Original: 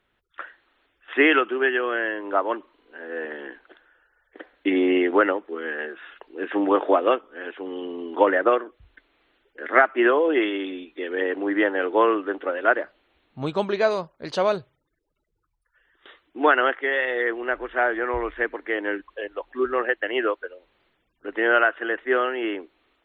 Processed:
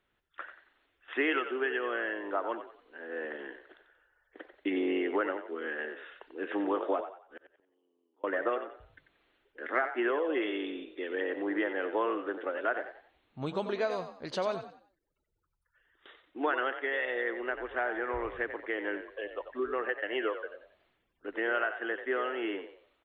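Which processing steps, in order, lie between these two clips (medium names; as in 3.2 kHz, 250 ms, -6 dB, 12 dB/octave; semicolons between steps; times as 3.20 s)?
compression 2:1, threshold -24 dBFS, peak gain reduction 7.5 dB; 7.00–8.24 s: inverted gate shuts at -29 dBFS, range -37 dB; on a send: frequency-shifting echo 91 ms, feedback 33%, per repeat +44 Hz, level -10 dB; on the sum: trim -6.5 dB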